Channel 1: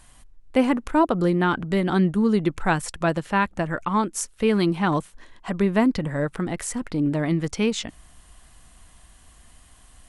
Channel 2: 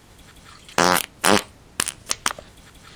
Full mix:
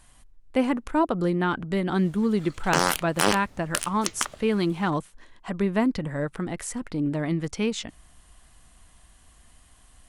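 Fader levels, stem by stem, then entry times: -3.5, -5.5 dB; 0.00, 1.95 s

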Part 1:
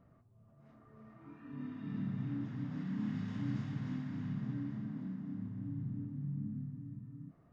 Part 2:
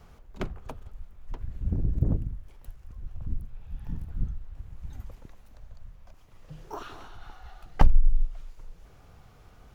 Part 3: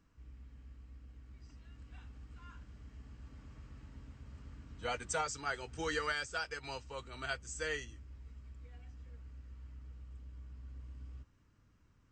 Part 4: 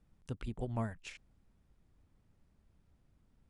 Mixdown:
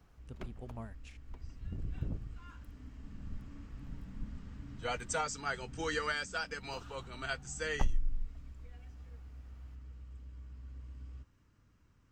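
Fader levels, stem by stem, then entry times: -15.0, -13.0, +1.0, -9.0 dB; 1.20, 0.00, 0.00, 0.00 s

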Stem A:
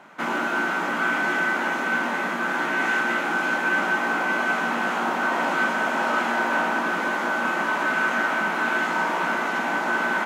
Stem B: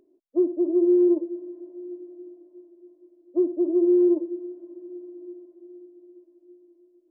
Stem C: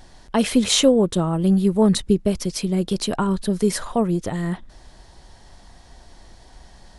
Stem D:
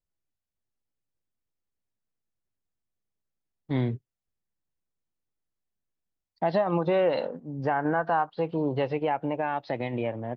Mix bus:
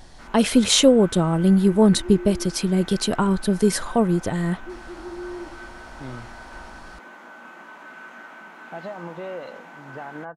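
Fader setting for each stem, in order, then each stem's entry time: -19.0, -16.0, +1.0, -10.5 dB; 0.00, 1.30, 0.00, 2.30 s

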